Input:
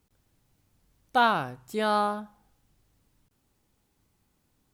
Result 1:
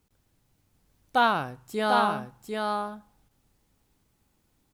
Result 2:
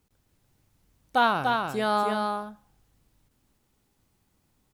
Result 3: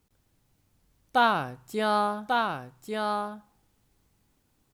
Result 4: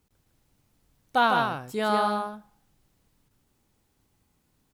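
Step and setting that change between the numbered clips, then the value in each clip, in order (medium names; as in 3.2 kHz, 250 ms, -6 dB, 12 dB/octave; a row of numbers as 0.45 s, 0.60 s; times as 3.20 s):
delay, time: 747 ms, 292 ms, 1143 ms, 155 ms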